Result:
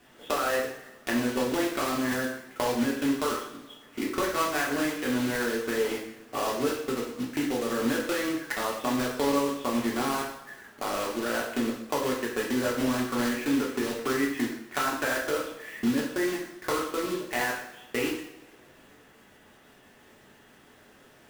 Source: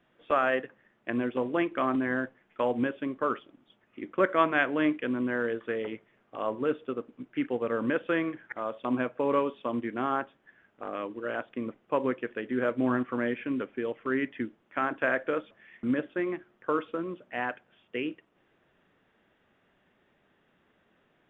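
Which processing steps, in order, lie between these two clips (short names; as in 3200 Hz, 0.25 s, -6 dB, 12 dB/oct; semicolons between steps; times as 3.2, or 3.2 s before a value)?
block floating point 3-bit; compressor 6:1, threshold -37 dBFS, peak gain reduction 18 dB; two-slope reverb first 0.67 s, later 2.9 s, from -25 dB, DRR -3 dB; gain +7.5 dB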